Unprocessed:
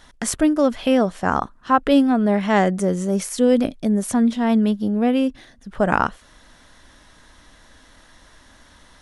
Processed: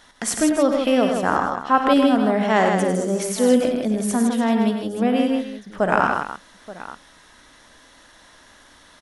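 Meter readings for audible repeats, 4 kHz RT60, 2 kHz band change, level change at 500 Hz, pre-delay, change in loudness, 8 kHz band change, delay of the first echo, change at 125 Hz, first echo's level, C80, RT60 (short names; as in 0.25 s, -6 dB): 5, none, +2.0 dB, +1.0 dB, none, 0.0 dB, +2.0 dB, 56 ms, -2.5 dB, -13.0 dB, none, none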